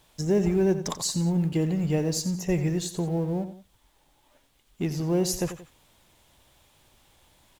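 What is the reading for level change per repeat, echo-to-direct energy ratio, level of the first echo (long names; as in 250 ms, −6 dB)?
−8.0 dB, −11.5 dB, −12.0 dB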